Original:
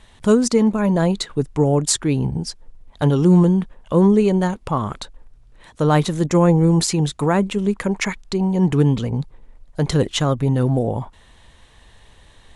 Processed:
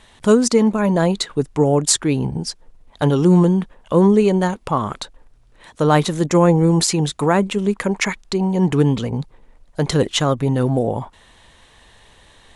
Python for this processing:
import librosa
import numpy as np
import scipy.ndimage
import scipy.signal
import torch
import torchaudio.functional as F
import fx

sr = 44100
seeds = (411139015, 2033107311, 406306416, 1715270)

y = fx.low_shelf(x, sr, hz=150.0, db=-8.0)
y = y * librosa.db_to_amplitude(3.0)